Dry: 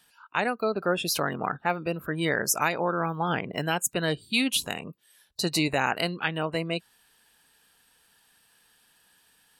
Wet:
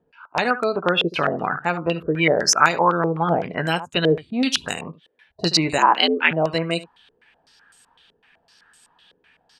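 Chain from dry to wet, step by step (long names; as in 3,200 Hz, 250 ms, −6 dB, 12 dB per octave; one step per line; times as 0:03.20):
ambience of single reflections 12 ms −10 dB, 75 ms −15.5 dB
0:05.78–0:06.31: frequency shifter +84 Hz
low-pass on a step sequencer 7.9 Hz 450–7,800 Hz
level +4 dB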